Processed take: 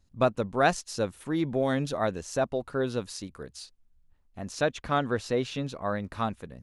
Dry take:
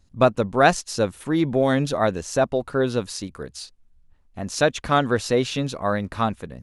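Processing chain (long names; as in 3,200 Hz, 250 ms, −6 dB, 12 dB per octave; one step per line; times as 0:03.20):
0:04.52–0:06.04: high-shelf EQ 5,300 Hz −6.5 dB
level −7 dB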